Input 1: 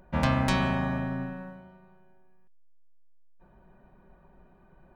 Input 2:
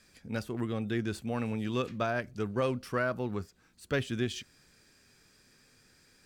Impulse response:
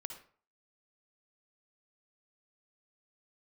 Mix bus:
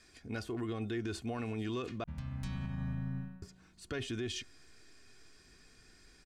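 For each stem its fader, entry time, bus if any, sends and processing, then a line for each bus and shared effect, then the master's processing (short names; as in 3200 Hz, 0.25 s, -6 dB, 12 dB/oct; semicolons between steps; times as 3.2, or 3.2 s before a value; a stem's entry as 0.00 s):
-10.0 dB, 1.95 s, no send, tone controls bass +14 dB, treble +5 dB; compressor 2.5:1, threshold -23 dBFS, peak gain reduction 9.5 dB; bell 510 Hz -10 dB 1.9 oct; auto duck -10 dB, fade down 0.20 s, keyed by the second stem
0.0 dB, 0.00 s, muted 2.04–3.42, no send, LPF 9000 Hz 12 dB/oct; comb 2.8 ms, depth 53%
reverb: off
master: limiter -29.5 dBFS, peak gain reduction 12 dB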